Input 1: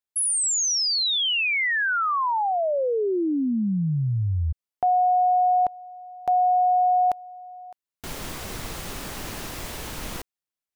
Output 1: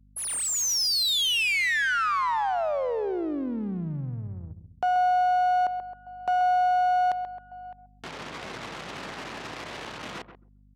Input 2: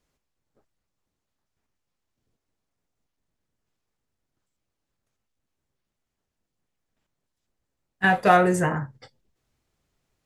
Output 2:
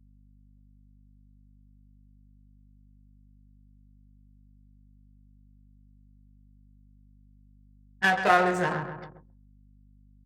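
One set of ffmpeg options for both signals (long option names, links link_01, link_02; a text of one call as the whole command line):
ffmpeg -i in.wav -filter_complex "[0:a]aeval=exprs='if(lt(val(0),0),0.447*val(0),val(0))':channel_layout=same,asplit=2[link_01][link_02];[link_02]adelay=133,lowpass=frequency=4800:poles=1,volume=-10.5dB,asplit=2[link_03][link_04];[link_04]adelay=133,lowpass=frequency=4800:poles=1,volume=0.45,asplit=2[link_05][link_06];[link_06]adelay=133,lowpass=frequency=4800:poles=1,volume=0.45,asplit=2[link_07][link_08];[link_08]adelay=133,lowpass=frequency=4800:poles=1,volume=0.45,asplit=2[link_09][link_10];[link_10]adelay=133,lowpass=frequency=4800:poles=1,volume=0.45[link_11];[link_03][link_05][link_07][link_09][link_11]amix=inputs=5:normalize=0[link_12];[link_01][link_12]amix=inputs=2:normalize=0,adynamicsmooth=sensitivity=5:basefreq=3100,highpass=frequency=110:width=0.5412,highpass=frequency=110:width=1.3066,asplit=2[link_13][link_14];[link_14]acompressor=threshold=-38dB:ratio=6:attack=4.4:release=56:knee=6,volume=-0.5dB[link_15];[link_13][link_15]amix=inputs=2:normalize=0,anlmdn=0.158,aeval=exprs='val(0)+0.00398*(sin(2*PI*50*n/s)+sin(2*PI*2*50*n/s)/2+sin(2*PI*3*50*n/s)/3+sin(2*PI*4*50*n/s)/4+sin(2*PI*5*50*n/s)/5)':channel_layout=same,lowshelf=frequency=430:gain=-8" out.wav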